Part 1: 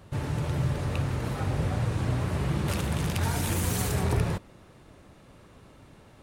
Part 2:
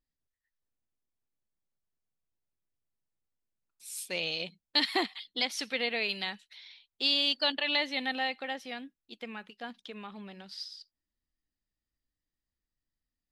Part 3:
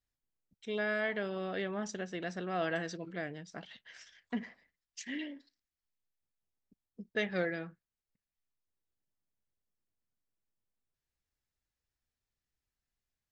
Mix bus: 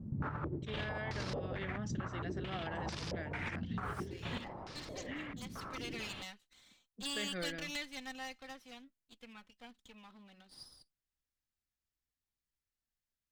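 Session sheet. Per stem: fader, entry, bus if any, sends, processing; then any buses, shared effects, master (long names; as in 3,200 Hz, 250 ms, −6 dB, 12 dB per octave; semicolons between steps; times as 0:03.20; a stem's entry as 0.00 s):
+0.5 dB, 0.00 s, bus A, no send, compressor whose output falls as the input rises −33 dBFS, ratio −0.5; low-shelf EQ 240 Hz −7.5 dB; low-pass on a step sequencer 4.5 Hz 220–5,100 Hz
0:05.13 −22 dB → 0:05.91 −11.5 dB, 0.00 s, no bus, no send, lower of the sound and its delayed copy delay 3.9 ms
−5.0 dB, 0.00 s, bus A, no send, pitch vibrato 0.51 Hz 24 cents
bus A: 0.0 dB, brickwall limiter −29 dBFS, peak gain reduction 10.5 dB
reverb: not used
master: parametric band 540 Hz −3.5 dB 1.5 octaves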